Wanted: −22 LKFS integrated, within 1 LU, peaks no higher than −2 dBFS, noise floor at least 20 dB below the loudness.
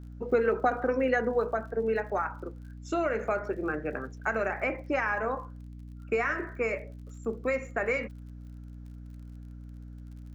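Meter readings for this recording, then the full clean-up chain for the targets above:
crackle rate 47 per second; mains hum 60 Hz; hum harmonics up to 300 Hz; level of the hum −41 dBFS; integrated loudness −30.0 LKFS; sample peak −13.0 dBFS; target loudness −22.0 LKFS
→ click removal
mains-hum notches 60/120/180/240/300 Hz
level +8 dB

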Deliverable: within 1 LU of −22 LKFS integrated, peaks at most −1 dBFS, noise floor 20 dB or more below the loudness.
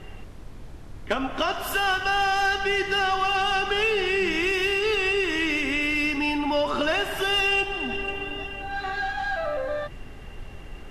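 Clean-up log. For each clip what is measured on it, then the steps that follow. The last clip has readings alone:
background noise floor −41 dBFS; target noise floor −44 dBFS; integrated loudness −24.0 LKFS; sample peak −13.0 dBFS; target loudness −22.0 LKFS
→ noise reduction from a noise print 6 dB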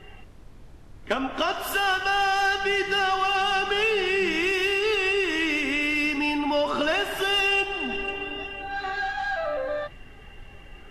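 background noise floor −46 dBFS; integrated loudness −24.0 LKFS; sample peak −13.5 dBFS; target loudness −22.0 LKFS
→ level +2 dB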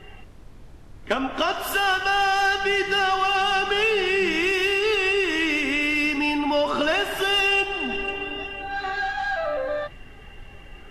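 integrated loudness −22.0 LKFS; sample peak −11.5 dBFS; background noise floor −44 dBFS

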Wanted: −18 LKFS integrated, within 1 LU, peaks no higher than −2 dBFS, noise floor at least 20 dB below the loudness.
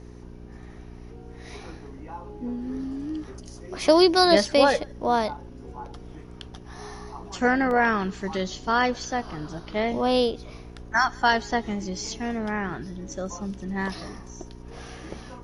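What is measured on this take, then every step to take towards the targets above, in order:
number of dropouts 2; longest dropout 1.3 ms; mains hum 60 Hz; hum harmonics up to 420 Hz; level of the hum −42 dBFS; integrated loudness −24.5 LKFS; sample peak −5.0 dBFS; target loudness −18.0 LKFS
→ repair the gap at 0:07.71/0:12.07, 1.3 ms
hum removal 60 Hz, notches 7
level +6.5 dB
brickwall limiter −2 dBFS

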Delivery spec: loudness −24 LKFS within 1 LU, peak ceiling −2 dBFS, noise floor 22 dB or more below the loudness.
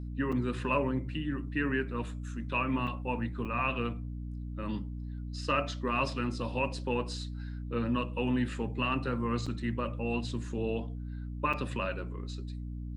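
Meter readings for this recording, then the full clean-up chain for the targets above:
number of dropouts 5; longest dropout 5.2 ms; mains hum 60 Hz; hum harmonics up to 300 Hz; level of the hum −36 dBFS; integrated loudness −33.5 LKFS; sample peak −16.0 dBFS; target loudness −24.0 LKFS
→ repair the gap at 0:00.32/0:02.87/0:03.45/0:09.46/0:11.53, 5.2 ms
hum removal 60 Hz, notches 5
level +9.5 dB

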